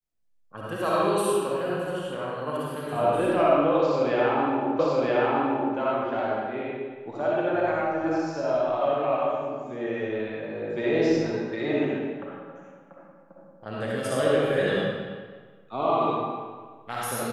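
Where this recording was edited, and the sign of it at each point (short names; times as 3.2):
4.79 repeat of the last 0.97 s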